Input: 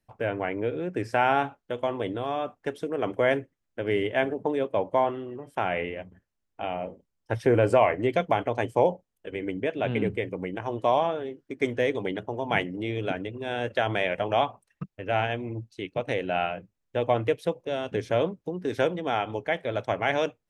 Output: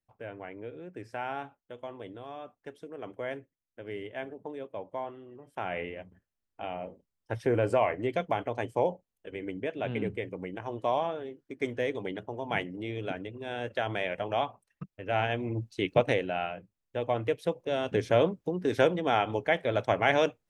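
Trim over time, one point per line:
5.18 s -13 dB
5.79 s -5.5 dB
14.93 s -5.5 dB
15.97 s +6.5 dB
16.35 s -5.5 dB
17.12 s -5.5 dB
17.88 s +1 dB

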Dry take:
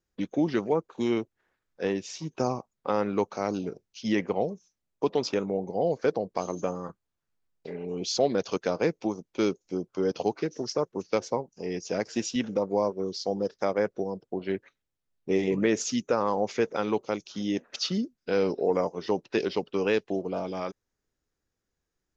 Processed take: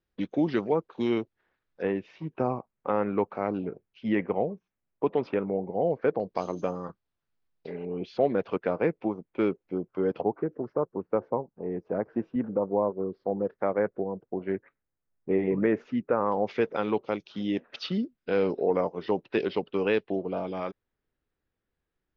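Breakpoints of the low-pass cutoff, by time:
low-pass 24 dB/octave
4.4 kHz
from 1.82 s 2.5 kHz
from 6.20 s 4.7 kHz
from 7.85 s 2.5 kHz
from 10.21 s 1.4 kHz
from 13.30 s 2 kHz
from 16.32 s 3.6 kHz

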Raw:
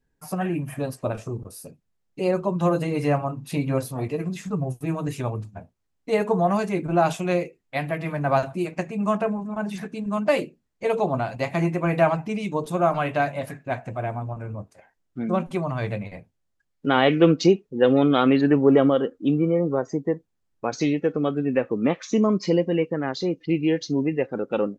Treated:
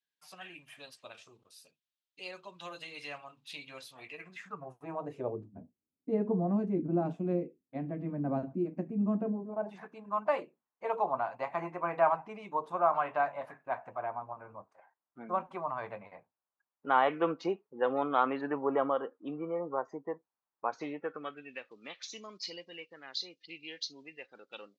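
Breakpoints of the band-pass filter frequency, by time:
band-pass filter, Q 2.5
3.88 s 3.5 kHz
5.03 s 730 Hz
5.56 s 260 Hz
9.27 s 260 Hz
9.84 s 1 kHz
21.00 s 1 kHz
21.63 s 4.2 kHz

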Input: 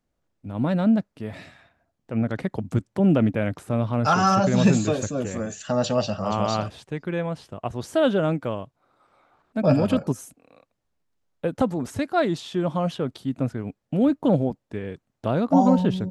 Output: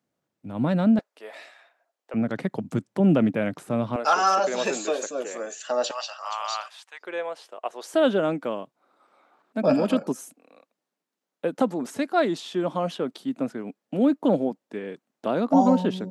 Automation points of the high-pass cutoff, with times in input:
high-pass 24 dB/octave
120 Hz
from 0.99 s 470 Hz
from 2.14 s 140 Hz
from 3.96 s 370 Hz
from 5.91 s 920 Hz
from 7.01 s 440 Hz
from 7.94 s 210 Hz

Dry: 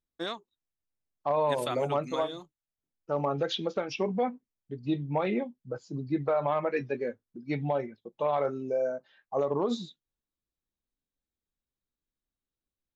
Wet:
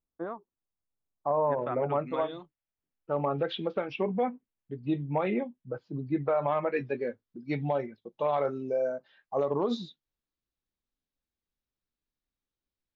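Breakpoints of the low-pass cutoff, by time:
low-pass 24 dB/octave
1.37 s 1.3 kHz
2.35 s 3.2 kHz
6.44 s 3.2 kHz
7.24 s 5.5 kHz

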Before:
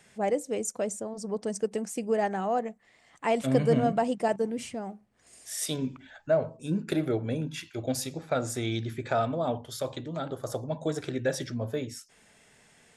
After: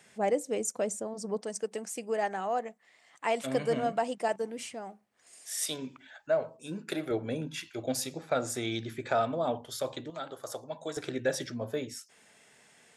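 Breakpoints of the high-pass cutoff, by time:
high-pass 6 dB/octave
180 Hz
from 1.41 s 640 Hz
from 7.11 s 260 Hz
from 10.10 s 950 Hz
from 10.97 s 260 Hz

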